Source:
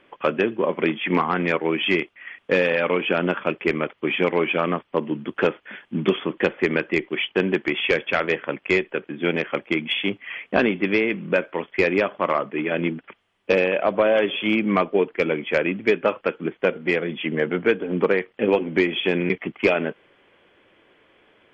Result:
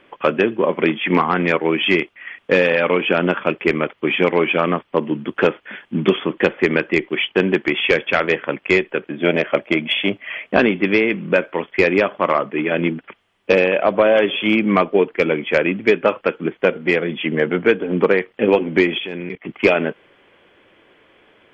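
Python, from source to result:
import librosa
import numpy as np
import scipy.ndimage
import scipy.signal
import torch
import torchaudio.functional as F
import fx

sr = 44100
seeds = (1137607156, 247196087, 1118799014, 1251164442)

y = fx.peak_eq(x, sr, hz=620.0, db=12.0, octaves=0.22, at=(9.1, 10.48))
y = fx.level_steps(y, sr, step_db=16, at=(18.98, 19.49))
y = y * librosa.db_to_amplitude(4.5)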